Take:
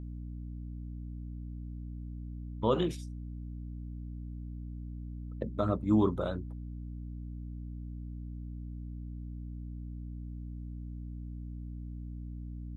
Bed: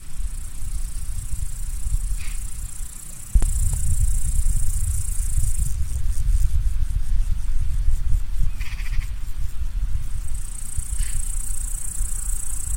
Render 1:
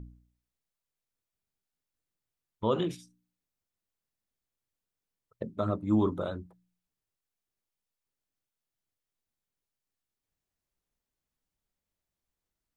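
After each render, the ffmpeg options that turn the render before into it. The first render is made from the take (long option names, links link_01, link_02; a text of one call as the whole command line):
ffmpeg -i in.wav -af "bandreject=frequency=60:width_type=h:width=4,bandreject=frequency=120:width_type=h:width=4,bandreject=frequency=180:width_type=h:width=4,bandreject=frequency=240:width_type=h:width=4,bandreject=frequency=300:width_type=h:width=4" out.wav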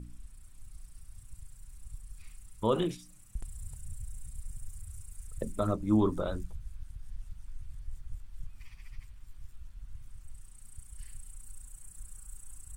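ffmpeg -i in.wav -i bed.wav -filter_complex "[1:a]volume=-21.5dB[link_01];[0:a][link_01]amix=inputs=2:normalize=0" out.wav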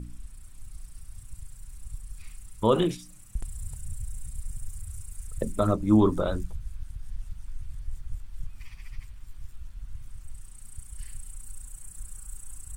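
ffmpeg -i in.wav -af "volume=6dB" out.wav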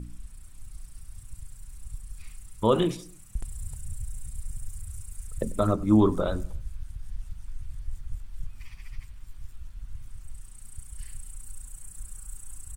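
ffmpeg -i in.wav -filter_complex "[0:a]asplit=2[link_01][link_02];[link_02]adelay=94,lowpass=frequency=2000:poles=1,volume=-20dB,asplit=2[link_03][link_04];[link_04]adelay=94,lowpass=frequency=2000:poles=1,volume=0.45,asplit=2[link_05][link_06];[link_06]adelay=94,lowpass=frequency=2000:poles=1,volume=0.45[link_07];[link_01][link_03][link_05][link_07]amix=inputs=4:normalize=0" out.wav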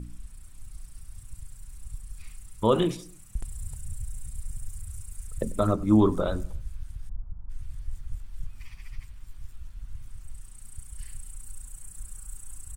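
ffmpeg -i in.wav -filter_complex "[0:a]asplit=3[link_01][link_02][link_03];[link_01]afade=type=out:start_time=7.08:duration=0.02[link_04];[link_02]lowpass=frequency=1100:width=0.5412,lowpass=frequency=1100:width=1.3066,afade=type=in:start_time=7.08:duration=0.02,afade=type=out:start_time=7.49:duration=0.02[link_05];[link_03]afade=type=in:start_time=7.49:duration=0.02[link_06];[link_04][link_05][link_06]amix=inputs=3:normalize=0" out.wav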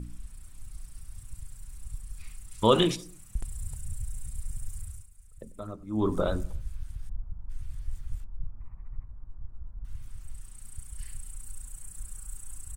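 ffmpeg -i in.wav -filter_complex "[0:a]asettb=1/sr,asplit=3[link_01][link_02][link_03];[link_01]atrim=end=2.514[link_04];[link_02]atrim=start=2.51:end=2.96,asetpts=PTS-STARTPTS,afade=type=in:duration=0.004:curve=qsin,afade=type=out:start_time=0.446:duration=0.004:curve=qsin,equalizer=frequency=4200:width_type=o:width=2.6:gain=9[link_05];[link_03]atrim=start=2.956[link_06];[link_04][link_05]acrossfade=duration=0.004:curve1=hsin:curve2=qsin[link_07];[link_07][link_06]acrossfade=duration=0.004:curve1=qsin:curve2=hsin,asettb=1/sr,asplit=3[link_08][link_09][link_10];[link_08]atrim=end=8.244[link_11];[link_09]atrim=start=8.24:end=9.85,asetpts=PTS-STARTPTS,afade=type=in:duration=0.004:curve=qsin,afade=type=out:start_time=1.606:duration=0.004:curve=qsin,lowpass=frequency=1100:width=0.5412,lowpass=frequency=1100:width=1.3066[link_12];[link_10]atrim=start=9.846[link_13];[link_11][link_12]acrossfade=duration=0.004:curve1=hsin:curve2=qsin[link_14];[link_14][link_13]acrossfade=duration=0.004:curve1=qsin:curve2=hsin,asplit=3[link_15][link_16][link_17];[link_15]atrim=end=5.09,asetpts=PTS-STARTPTS,afade=type=out:start_time=4.83:duration=0.26:silence=0.16788[link_18];[link_16]atrim=start=5.09:end=5.93,asetpts=PTS-STARTPTS,volume=-15.5dB[link_19];[link_17]atrim=start=5.93,asetpts=PTS-STARTPTS,afade=type=in:duration=0.26:silence=0.16788[link_20];[link_18][link_19][link_20]concat=n=3:v=0:a=1" out.wav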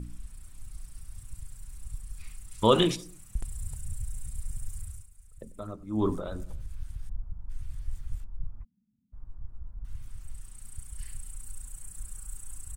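ffmpeg -i in.wav -filter_complex "[0:a]asettb=1/sr,asplit=3[link_01][link_02][link_03];[link_01]atrim=end=6.144[link_04];[link_02]atrim=start=6.14:end=6.77,asetpts=PTS-STARTPTS,afade=type=in:duration=0.004:curve=qsin,afade=type=out:start_time=0.626:duration=0.004:curve=qsin,acompressor=threshold=-31dB:ratio=6:attack=3.2:release=140:knee=1:detection=peak[link_05];[link_03]atrim=start=6.766[link_06];[link_04][link_05]acrossfade=duration=0.004:curve1=hsin:curve2=qsin[link_07];[link_07][link_06]acrossfade=duration=0.004:curve1=qsin:curve2=hsin,asplit=3[link_08][link_09][link_10];[link_08]afade=type=out:start_time=8.63:duration=0.02[link_11];[link_09]asuperpass=centerf=220:order=4:qfactor=4.4,afade=type=in:start_time=8.63:duration=0.02,afade=type=out:start_time=9.12:duration=0.02[link_12];[link_10]afade=type=in:start_time=9.12:duration=0.02[link_13];[link_11][link_12][link_13]amix=inputs=3:normalize=0" out.wav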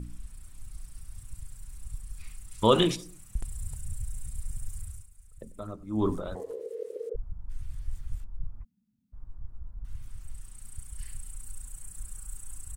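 ffmpeg -i in.wav -filter_complex "[0:a]asplit=3[link_01][link_02][link_03];[link_01]afade=type=out:start_time=6.34:duration=0.02[link_04];[link_02]aeval=exprs='val(0)*sin(2*PI*460*n/s)':channel_layout=same,afade=type=in:start_time=6.34:duration=0.02,afade=type=out:start_time=7.14:duration=0.02[link_05];[link_03]afade=type=in:start_time=7.14:duration=0.02[link_06];[link_04][link_05][link_06]amix=inputs=3:normalize=0" out.wav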